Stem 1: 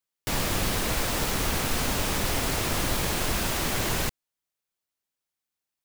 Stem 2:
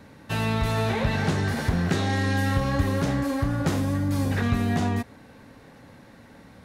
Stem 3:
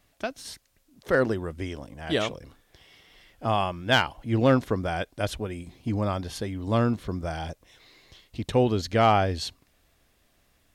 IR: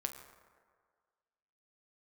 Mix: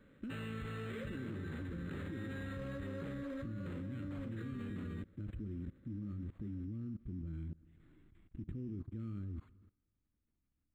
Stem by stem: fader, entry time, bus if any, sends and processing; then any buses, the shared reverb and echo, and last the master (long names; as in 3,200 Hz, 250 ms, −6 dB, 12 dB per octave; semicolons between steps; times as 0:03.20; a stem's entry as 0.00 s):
muted
−8.0 dB, 0.00 s, no bus, no send, low-shelf EQ 120 Hz −8 dB
−1.0 dB, 0.00 s, bus A, send −8.5 dB, drawn EQ curve 320 Hz 0 dB, 520 Hz −27 dB, 890 Hz −22 dB; speech leveller within 5 dB 0.5 s; log-companded quantiser 8 bits
bus A: 0.0 dB, downward compressor 3 to 1, threshold −36 dBFS, peak gain reduction 10.5 dB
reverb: on, RT60 1.8 s, pre-delay 7 ms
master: elliptic band-stop filter 570–1,200 Hz; output level in coarse steps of 21 dB; linearly interpolated sample-rate reduction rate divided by 8×